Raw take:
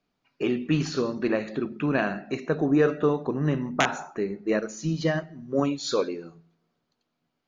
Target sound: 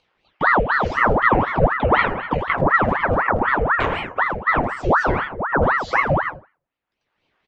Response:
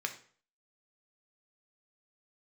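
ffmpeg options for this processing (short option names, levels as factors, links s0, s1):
-filter_complex "[0:a]aemphasis=mode=production:type=cd,bandreject=f=98.52:t=h:w=4,bandreject=f=197.04:t=h:w=4,bandreject=f=295.56:t=h:w=4,bandreject=f=394.08:t=h:w=4,bandreject=f=492.6:t=h:w=4,bandreject=f=591.12:t=h:w=4,bandreject=f=689.64:t=h:w=4,bandreject=f=788.16:t=h:w=4,bandreject=f=886.68:t=h:w=4,bandreject=f=985.2:t=h:w=4,bandreject=f=1083.72:t=h:w=4,bandreject=f=1182.24:t=h:w=4,bandreject=f=1280.76:t=h:w=4,bandreject=f=1379.28:t=h:w=4,bandreject=f=1477.8:t=h:w=4,bandreject=f=1576.32:t=h:w=4,bandreject=f=1674.84:t=h:w=4,bandreject=f=1773.36:t=h:w=4,bandreject=f=1871.88:t=h:w=4,bandreject=f=1970.4:t=h:w=4,bandreject=f=2068.92:t=h:w=4,bandreject=f=2167.44:t=h:w=4,bandreject=f=2265.96:t=h:w=4,bandreject=f=2364.48:t=h:w=4,bandreject=f=2463:t=h:w=4,bandreject=f=2561.52:t=h:w=4,bandreject=f=2660.04:t=h:w=4,bandreject=f=2758.56:t=h:w=4,bandreject=f=2857.08:t=h:w=4,agate=range=0.02:threshold=0.00891:ratio=16:detection=peak,lowpass=1400,equalizer=f=310:t=o:w=1.8:g=10.5,asplit=2[s0][s1];[s1]acompressor=threshold=0.0447:ratio=6,volume=1.33[s2];[s0][s2]amix=inputs=2:normalize=0,alimiter=limit=0.422:level=0:latency=1:release=100,acrossover=split=290|780[s3][s4][s5];[s5]acompressor=mode=upward:threshold=0.0158:ratio=2.5[s6];[s3][s4][s6]amix=inputs=3:normalize=0,asplit=2[s7][s8];[s8]adelay=17,volume=0.501[s9];[s7][s9]amix=inputs=2:normalize=0,asplit=2[s10][s11];[s11]adelay=80,highpass=300,lowpass=3400,asoftclip=type=hard:threshold=0.224,volume=0.251[s12];[s10][s12]amix=inputs=2:normalize=0[s13];[1:a]atrim=start_sample=2205,asetrate=57330,aresample=44100[s14];[s13][s14]afir=irnorm=-1:irlink=0,aeval=exprs='val(0)*sin(2*PI*920*n/s+920*0.8/4*sin(2*PI*4*n/s))':c=same,volume=1.68"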